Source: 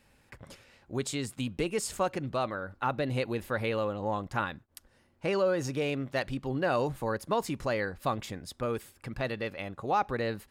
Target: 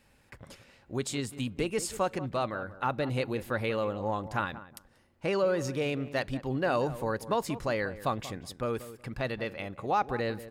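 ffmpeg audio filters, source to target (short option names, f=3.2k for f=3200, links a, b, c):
-filter_complex "[0:a]asplit=2[a][b];[b]adelay=185,lowpass=f=1.3k:p=1,volume=-13.5dB,asplit=2[c][d];[d]adelay=185,lowpass=f=1.3k:p=1,volume=0.23,asplit=2[e][f];[f]adelay=185,lowpass=f=1.3k:p=1,volume=0.23[g];[a][c][e][g]amix=inputs=4:normalize=0"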